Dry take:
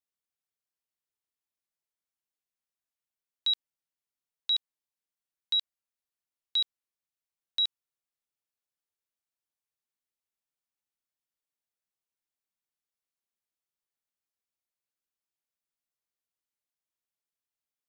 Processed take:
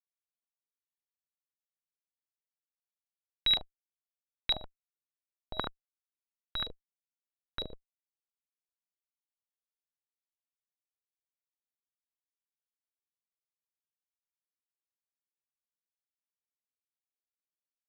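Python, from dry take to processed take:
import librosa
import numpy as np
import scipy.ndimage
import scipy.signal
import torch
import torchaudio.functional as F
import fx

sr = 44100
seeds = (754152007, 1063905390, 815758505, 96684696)

y = fx.highpass(x, sr, hz=290.0, slope=6, at=(5.57, 6.56))
y = fx.fuzz(y, sr, gain_db=56.0, gate_db=-57.0)
y = fx.room_early_taps(y, sr, ms=(46, 75), db=(-9.0, -6.5))
y = fx.filter_held_lowpass(y, sr, hz=8.4, low_hz=480.0, high_hz=2200.0)
y = y * 10.0 ** (-4.0 / 20.0)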